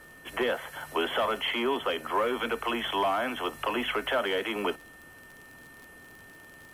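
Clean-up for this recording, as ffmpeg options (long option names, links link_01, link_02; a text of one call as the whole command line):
ffmpeg -i in.wav -af "adeclick=threshold=4,bandreject=frequency=1800:width=30" out.wav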